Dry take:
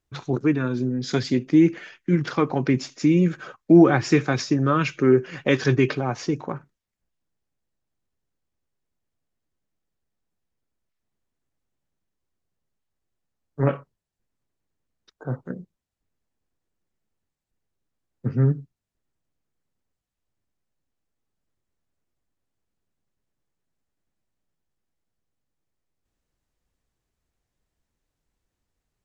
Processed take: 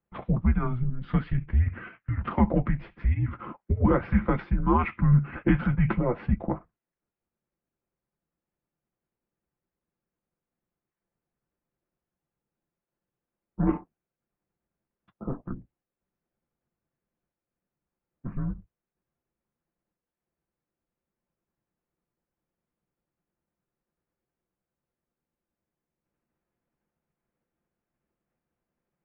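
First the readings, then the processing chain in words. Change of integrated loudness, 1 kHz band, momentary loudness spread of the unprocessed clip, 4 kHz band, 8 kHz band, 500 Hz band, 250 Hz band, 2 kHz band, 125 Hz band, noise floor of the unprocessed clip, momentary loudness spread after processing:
-5.5 dB, -2.5 dB, 16 LU, under -15 dB, n/a, -10.5 dB, -7.0 dB, -8.0 dB, -1.5 dB, -83 dBFS, 14 LU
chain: tilt -4 dB/oct; in parallel at -3 dB: level quantiser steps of 15 dB; on the sum: limiter -5 dBFS, peak gain reduction 10 dB; notch comb 170 Hz; mistuned SSB -240 Hz 360–3000 Hz

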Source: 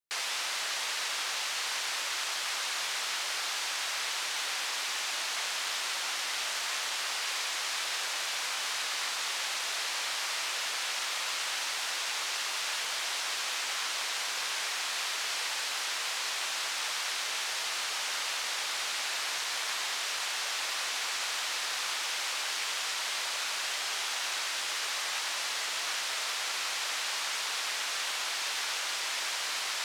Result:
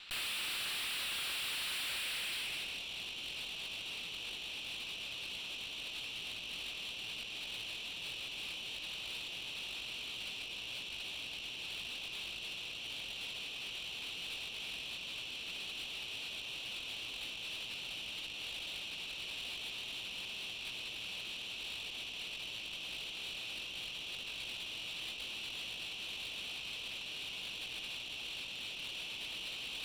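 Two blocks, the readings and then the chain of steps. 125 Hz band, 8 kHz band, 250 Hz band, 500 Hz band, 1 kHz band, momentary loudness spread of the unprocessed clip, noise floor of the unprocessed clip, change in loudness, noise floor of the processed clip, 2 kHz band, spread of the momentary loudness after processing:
n/a, -16.5 dB, +1.5 dB, -10.5 dB, -18.0 dB, 0 LU, -34 dBFS, -9.0 dB, -45 dBFS, -9.5 dB, 5 LU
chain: weighting filter D; band-pass sweep 1300 Hz -> 2700 Hz, 1.82–2.84; band shelf 3300 Hz +14.5 dB 1.1 oct; negative-ratio compressor -37 dBFS, ratio -0.5; tube stage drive 52 dB, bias 0.6; notch 6500 Hz, Q 6.7; gain +14 dB

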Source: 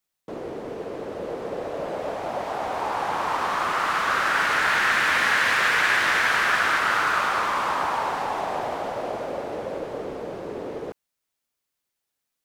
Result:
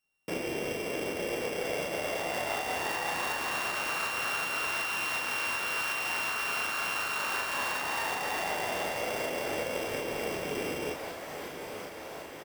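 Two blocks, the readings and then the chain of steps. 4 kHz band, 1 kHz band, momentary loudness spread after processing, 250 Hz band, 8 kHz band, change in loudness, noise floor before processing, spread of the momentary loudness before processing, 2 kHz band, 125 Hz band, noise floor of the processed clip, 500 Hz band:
-4.5 dB, -10.5 dB, 9 LU, -3.5 dB, -1.0 dB, -8.5 dB, -82 dBFS, 15 LU, -10.0 dB, -4.0 dB, -43 dBFS, -4.5 dB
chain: sample sorter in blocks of 16 samples; limiter -19.5 dBFS, peak gain reduction 11 dB; diffused feedback echo 0.954 s, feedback 67%, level -13 dB; tremolo saw up 2.7 Hz, depth 35%; compressor 5:1, threshold -34 dBFS, peak gain reduction 8.5 dB; early reflections 28 ms -4.5 dB, 40 ms -3.5 dB; gain +1.5 dB

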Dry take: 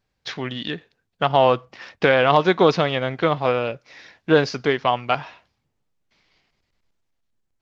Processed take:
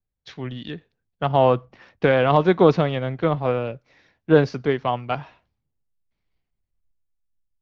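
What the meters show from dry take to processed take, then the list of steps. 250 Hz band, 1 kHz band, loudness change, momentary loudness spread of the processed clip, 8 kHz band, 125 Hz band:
+1.5 dB, -3.0 dB, 0.0 dB, 17 LU, n/a, +3.5 dB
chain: tilt -2.5 dB/oct; notch 5000 Hz, Q 26; three-band expander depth 40%; gain -3.5 dB

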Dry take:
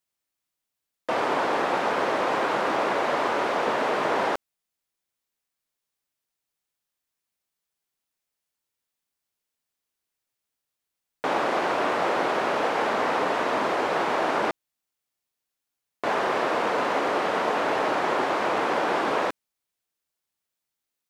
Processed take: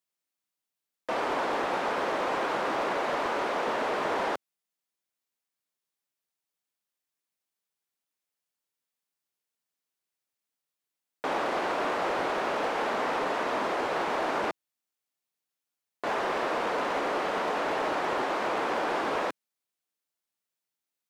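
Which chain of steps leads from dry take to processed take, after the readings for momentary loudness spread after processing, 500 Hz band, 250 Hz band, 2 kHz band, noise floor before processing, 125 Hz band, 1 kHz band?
3 LU, -4.5 dB, -4.5 dB, -4.5 dB, -85 dBFS, -5.0 dB, -4.5 dB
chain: HPF 130 Hz; hard clip -19 dBFS, distortion -19 dB; gain -4 dB

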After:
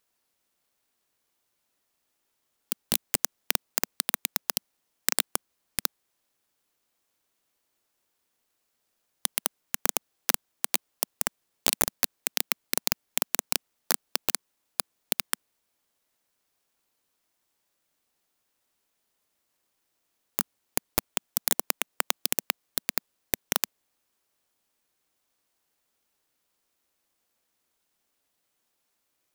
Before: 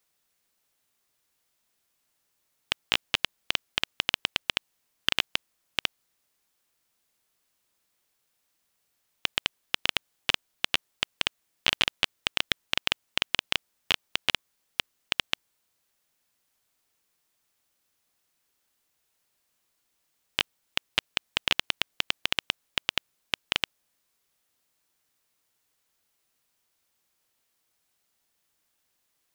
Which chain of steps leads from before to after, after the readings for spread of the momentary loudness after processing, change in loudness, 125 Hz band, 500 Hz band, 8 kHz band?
7 LU, 0.0 dB, 0.0 dB, +2.5 dB, +12.5 dB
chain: steep high-pass 210 Hz 36 dB/oct; clock jitter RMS 0.14 ms

